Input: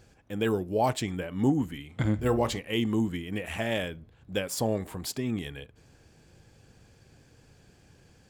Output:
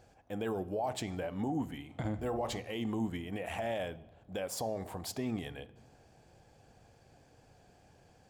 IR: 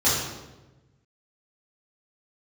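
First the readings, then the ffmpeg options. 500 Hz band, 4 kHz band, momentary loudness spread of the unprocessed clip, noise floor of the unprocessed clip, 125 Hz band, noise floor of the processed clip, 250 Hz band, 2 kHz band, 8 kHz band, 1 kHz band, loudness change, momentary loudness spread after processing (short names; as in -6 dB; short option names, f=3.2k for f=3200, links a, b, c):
-6.5 dB, -8.5 dB, 9 LU, -60 dBFS, -9.5 dB, -63 dBFS, -8.0 dB, -8.5 dB, -6.5 dB, -6.0 dB, -7.5 dB, 8 LU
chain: -filter_complex "[0:a]equalizer=f=720:w=1.7:g=12,alimiter=limit=-20.5dB:level=0:latency=1:release=52,asplit=2[a][b];[1:a]atrim=start_sample=2205,asetrate=40131,aresample=44100[c];[b][c]afir=irnorm=-1:irlink=0,volume=-33.5dB[d];[a][d]amix=inputs=2:normalize=0,volume=-6.5dB"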